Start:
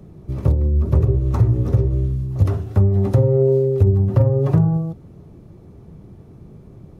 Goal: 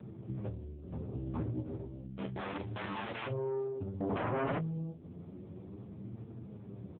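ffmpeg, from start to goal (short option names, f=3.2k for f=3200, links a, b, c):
-filter_complex "[0:a]asplit=3[a][b][c];[a]afade=t=out:st=2.17:d=0.02[d];[b]aeval=exprs='(mod(10*val(0)+1,2)-1)/10':c=same,afade=t=in:st=2.17:d=0.02,afade=t=out:st=3.26:d=0.02[e];[c]afade=t=in:st=3.26:d=0.02[f];[d][e][f]amix=inputs=3:normalize=0,aeval=exprs='(tanh(6.31*val(0)+0.25)-tanh(0.25))/6.31':c=same,acompressor=threshold=-33dB:ratio=6,aecho=1:1:16|45:0.211|0.2,flanger=delay=8.7:depth=4.1:regen=14:speed=0.32:shape=triangular,lowshelf=f=67:g=-6.5,asettb=1/sr,asplit=3[g][h][i];[g]atrim=end=1.134[j];[h]atrim=start=1.13:end=1.61,asetpts=PTS-STARTPTS,afade=t=in:d=0.004:c=qsin,afade=t=out:st=0.476:d=0.004:c=qsin,acontrast=57[k];[i]atrim=start=1.606[l];[j][k]acrossfade=d=0.004:c1=hsin:c2=qsin[m];[m][l]acrossfade=d=0.004:c1=qsin:c2=hsin,asettb=1/sr,asplit=3[n][o][p];[n]atrim=end=4.004[q];[o]atrim=start=4:end=4.58,asetpts=PTS-STARTPTS,afade=t=in:d=0.004:c=qsin,afade=t=out:st=0.576:d=0.004:c=qsin,aeval=exprs='0.0335*sin(PI/2*4.47*val(0)/0.0335)':c=same[r];[p]atrim=start=4.576[s];[q][r]acrossfade=d=0.004:c1=hsin:c2=qsin[t];[t][s]acrossfade=d=0.004:c1=qsin:c2=hsin,asplit=2[u][v];[v]adelay=25,volume=-11dB[w];[u][w]amix=inputs=2:normalize=0,volume=1dB" -ar 8000 -c:a libopencore_amrnb -b:a 6700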